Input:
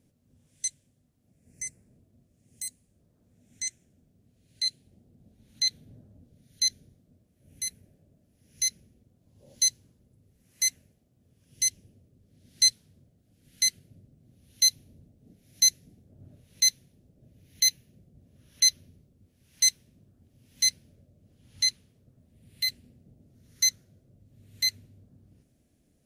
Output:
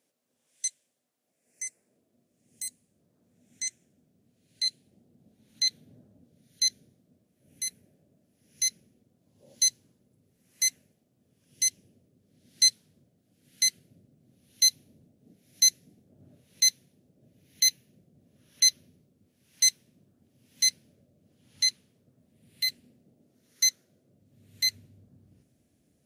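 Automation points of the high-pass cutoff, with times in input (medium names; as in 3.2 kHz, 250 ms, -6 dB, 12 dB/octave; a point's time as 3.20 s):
1.65 s 560 Hz
2.65 s 160 Hz
22.68 s 160 Hz
23.65 s 340 Hz
24.75 s 84 Hz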